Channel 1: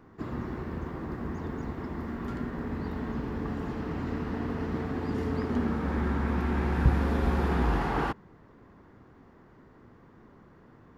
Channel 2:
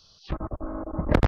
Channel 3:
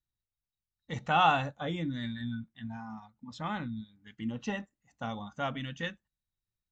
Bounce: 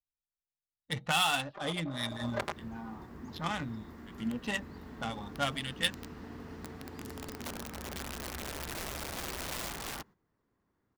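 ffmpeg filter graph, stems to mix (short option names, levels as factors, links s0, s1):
-filter_complex "[0:a]highshelf=f=3800:g=8.5,aeval=exprs='(mod(12.6*val(0)+1,2)-1)/12.6':c=same,adelay=1900,volume=0.211[s0];[1:a]highpass=740,aecho=1:1:5:0.94,adelay=1250,volume=0.531[s1];[2:a]equalizer=f=4200:w=0.75:g=15,flanger=delay=3:depth=4.9:regen=49:speed=0.66:shape=triangular,volume=1.33[s2];[s1][s2]amix=inputs=2:normalize=0,adynamicsmooth=sensitivity=3.5:basefreq=990,alimiter=limit=0.119:level=0:latency=1:release=432,volume=1[s3];[s0][s3]amix=inputs=2:normalize=0,agate=range=0.282:threshold=0.00158:ratio=16:detection=peak,highshelf=f=4100:g=6.5"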